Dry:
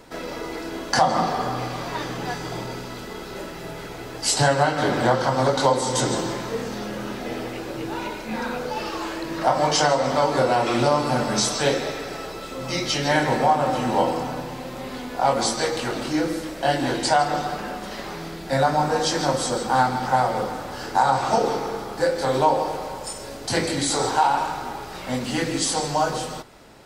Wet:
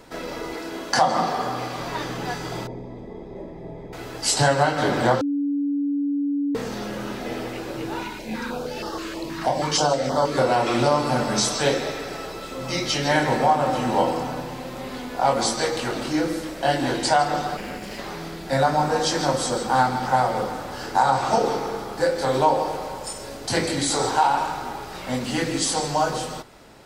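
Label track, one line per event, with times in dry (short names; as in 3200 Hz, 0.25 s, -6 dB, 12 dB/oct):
0.540000	1.790000	low shelf 110 Hz -10.5 dB
2.670000	3.930000	running mean over 31 samples
5.210000	6.550000	bleep 285 Hz -20.5 dBFS
8.030000	10.380000	stepped notch 6.3 Hz 540–2400 Hz
17.570000	17.990000	minimum comb delay 0.4 ms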